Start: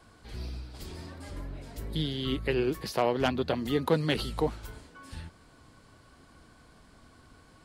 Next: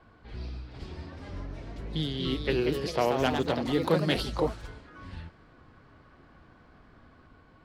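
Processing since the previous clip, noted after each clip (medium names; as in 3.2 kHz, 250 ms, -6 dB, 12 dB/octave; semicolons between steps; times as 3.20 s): ever faster or slower copies 457 ms, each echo +2 st, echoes 3, each echo -6 dB; level-controlled noise filter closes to 2.4 kHz, open at -23 dBFS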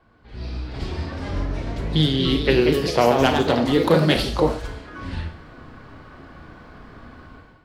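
Schroeder reverb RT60 0.46 s, combs from 26 ms, DRR 7 dB; level rider gain up to 14.5 dB; trim -2 dB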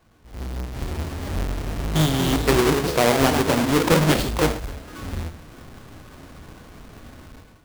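square wave that keeps the level; trim -5 dB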